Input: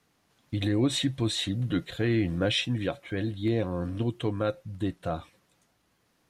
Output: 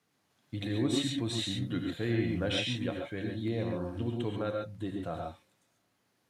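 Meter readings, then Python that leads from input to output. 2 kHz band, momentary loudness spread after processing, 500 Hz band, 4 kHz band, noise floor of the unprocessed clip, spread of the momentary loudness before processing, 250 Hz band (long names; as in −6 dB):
−4.0 dB, 8 LU, −4.0 dB, −4.0 dB, −71 dBFS, 8 LU, −4.0 dB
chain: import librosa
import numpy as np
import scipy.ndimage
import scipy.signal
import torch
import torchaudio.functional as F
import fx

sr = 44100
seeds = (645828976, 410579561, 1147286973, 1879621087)

y = scipy.signal.sosfilt(scipy.signal.butter(2, 92.0, 'highpass', fs=sr, output='sos'), x)
y = fx.rev_gated(y, sr, seeds[0], gate_ms=160, shape='rising', drr_db=1.5)
y = F.gain(torch.from_numpy(y), -6.5).numpy()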